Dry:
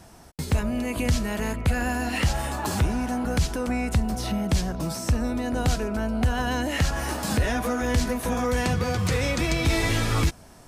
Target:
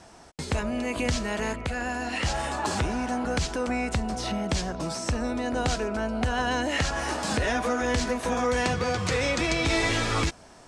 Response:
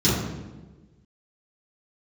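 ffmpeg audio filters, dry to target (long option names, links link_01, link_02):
-filter_complex "[0:a]lowpass=frequency=8600:width=0.5412,lowpass=frequency=8600:width=1.3066,bass=frequency=250:gain=-8,treble=frequency=4000:gain=-1,asplit=3[link_01][link_02][link_03];[link_01]afade=type=out:start_time=1.56:duration=0.02[link_04];[link_02]acompressor=threshold=-31dB:ratio=2,afade=type=in:start_time=1.56:duration=0.02,afade=type=out:start_time=2.23:duration=0.02[link_05];[link_03]afade=type=in:start_time=2.23:duration=0.02[link_06];[link_04][link_05][link_06]amix=inputs=3:normalize=0,volume=1.5dB"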